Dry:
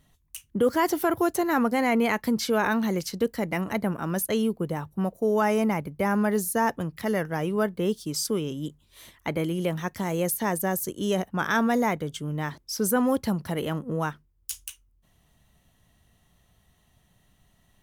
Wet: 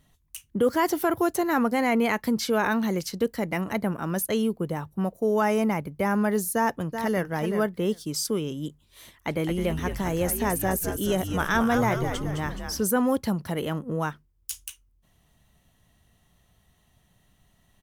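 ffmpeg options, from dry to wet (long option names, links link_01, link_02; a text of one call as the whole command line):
ffmpeg -i in.wav -filter_complex "[0:a]asplit=2[link_01][link_02];[link_02]afade=type=in:start_time=6.54:duration=0.01,afade=type=out:start_time=7.28:duration=0.01,aecho=0:1:380|760:0.398107|0.0398107[link_03];[link_01][link_03]amix=inputs=2:normalize=0,asplit=3[link_04][link_05][link_06];[link_04]afade=type=out:start_time=9.28:duration=0.02[link_07];[link_05]asplit=7[link_08][link_09][link_10][link_11][link_12][link_13][link_14];[link_09]adelay=211,afreqshift=-110,volume=-6.5dB[link_15];[link_10]adelay=422,afreqshift=-220,volume=-12.2dB[link_16];[link_11]adelay=633,afreqshift=-330,volume=-17.9dB[link_17];[link_12]adelay=844,afreqshift=-440,volume=-23.5dB[link_18];[link_13]adelay=1055,afreqshift=-550,volume=-29.2dB[link_19];[link_14]adelay=1266,afreqshift=-660,volume=-34.9dB[link_20];[link_08][link_15][link_16][link_17][link_18][link_19][link_20]amix=inputs=7:normalize=0,afade=type=in:start_time=9.28:duration=0.02,afade=type=out:start_time=12.82:duration=0.02[link_21];[link_06]afade=type=in:start_time=12.82:duration=0.02[link_22];[link_07][link_21][link_22]amix=inputs=3:normalize=0" out.wav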